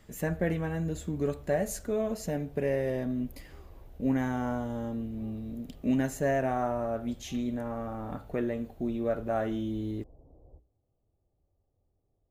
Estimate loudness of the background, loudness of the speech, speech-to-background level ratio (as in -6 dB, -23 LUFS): -54.0 LUFS, -32.0 LUFS, 22.0 dB